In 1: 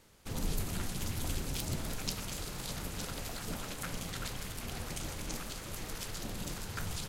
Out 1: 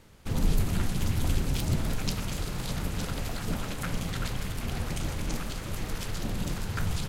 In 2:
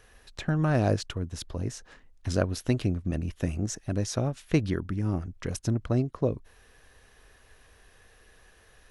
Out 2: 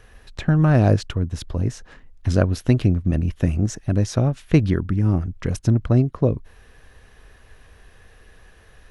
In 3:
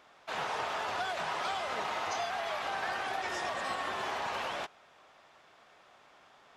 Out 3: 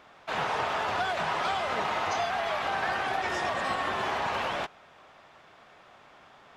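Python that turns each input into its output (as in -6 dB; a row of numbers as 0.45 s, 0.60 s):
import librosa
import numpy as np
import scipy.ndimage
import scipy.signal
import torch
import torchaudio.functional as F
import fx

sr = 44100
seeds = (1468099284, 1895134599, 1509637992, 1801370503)

y = fx.bass_treble(x, sr, bass_db=5, treble_db=-5)
y = F.gain(torch.from_numpy(y), 5.5).numpy()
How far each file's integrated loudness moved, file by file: +7.0 LU, +9.0 LU, +5.5 LU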